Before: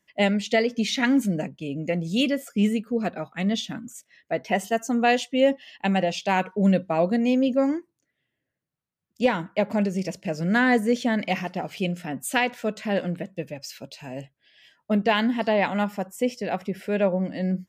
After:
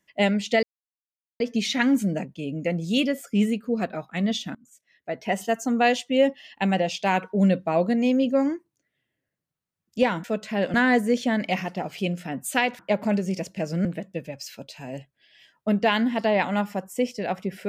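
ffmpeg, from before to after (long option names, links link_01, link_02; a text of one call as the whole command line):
ffmpeg -i in.wav -filter_complex "[0:a]asplit=7[link_01][link_02][link_03][link_04][link_05][link_06][link_07];[link_01]atrim=end=0.63,asetpts=PTS-STARTPTS,afade=type=out:start_time=0.626:duration=0.004:curve=hsin,apad=pad_dur=0.77[link_08];[link_02]atrim=start=0.63:end=3.78,asetpts=PTS-STARTPTS,afade=type=in:duration=0.004:curve=hsin,afade=type=out:start_time=3.146:duration=0.004:curve=hsin:silence=0.0668344[link_09];[link_03]atrim=start=3.78:end=9.472,asetpts=PTS-STARTPTS,afade=type=in:duration=0.93:silence=0.0668344[link_10];[link_04]atrim=start=12.578:end=13.082[link_11];[link_05]atrim=start=10.528:end=12.582[link_12];[link_06]atrim=start=9.468:end=10.532[link_13];[link_07]atrim=start=13.078[link_14];[link_08][link_09][link_10]concat=n=3:v=0:a=1[link_15];[link_15][link_11]acrossfade=duration=0.004:curve1=hsin:curve2=hsin[link_16];[link_16][link_12]acrossfade=duration=0.004:curve1=hsin:curve2=hsin[link_17];[link_17][link_13]acrossfade=duration=0.004:curve1=hsin:curve2=hsin[link_18];[link_18][link_14]acrossfade=duration=0.004:curve1=hsin:curve2=hsin" out.wav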